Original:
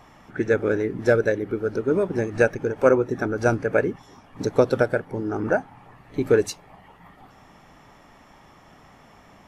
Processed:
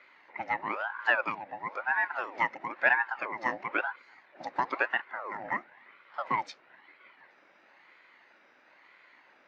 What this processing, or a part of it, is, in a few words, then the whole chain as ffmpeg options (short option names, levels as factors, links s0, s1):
voice changer toy: -af "aeval=exprs='val(0)*sin(2*PI*840*n/s+840*0.55/1*sin(2*PI*1*n/s))':c=same,highpass=440,equalizer=f=450:t=q:w=4:g=-7,equalizer=f=700:t=q:w=4:g=-6,equalizer=f=1200:t=q:w=4:g=-5,equalizer=f=2000:t=q:w=4:g=6,equalizer=f=3200:t=q:w=4:g=-5,lowpass=f=4400:w=0.5412,lowpass=f=4400:w=1.3066,volume=0.631"